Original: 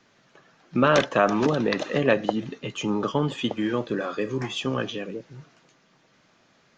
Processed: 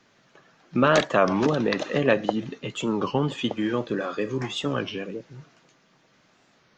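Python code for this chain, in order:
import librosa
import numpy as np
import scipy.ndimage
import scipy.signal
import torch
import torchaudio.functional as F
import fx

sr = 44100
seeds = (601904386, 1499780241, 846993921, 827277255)

y = fx.record_warp(x, sr, rpm=33.33, depth_cents=160.0)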